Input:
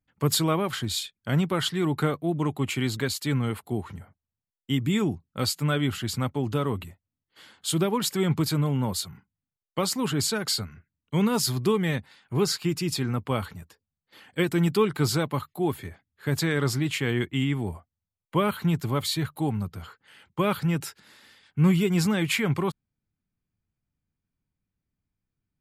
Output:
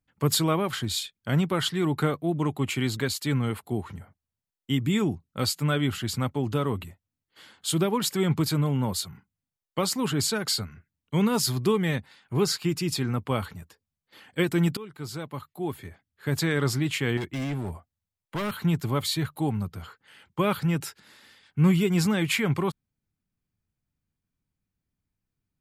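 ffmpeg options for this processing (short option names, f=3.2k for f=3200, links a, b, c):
-filter_complex "[0:a]asettb=1/sr,asplit=3[a][b][c];[a]atrim=end=17.174[d];[b]atrim=start=17.17:end=18.6,asetpts=PTS-STARTPTS,afade=t=in:d=0.004:c=qsin,afade=t=out:st=1.426:d=0.004:c=qsin,volume=26.5dB,asoftclip=hard,volume=-26.5dB[e];[c]atrim=start=18.596[f];[d][e]acrossfade=d=0.004:c1=hsin:c2=qsin[g];[g][f]acrossfade=d=0.004:c1=qsin:c2=hsin,asplit=2[h][i];[h]atrim=end=14.77,asetpts=PTS-STARTPTS,afade=t=out:st=14.766:d=0.004:c=hsin:silence=0.0944061[j];[i]atrim=start=14.77,asetpts=PTS-STARTPTS,afade=t=in:d=1.7:silence=0.0944061[k];[j][k]concat=n=2:v=0:a=1"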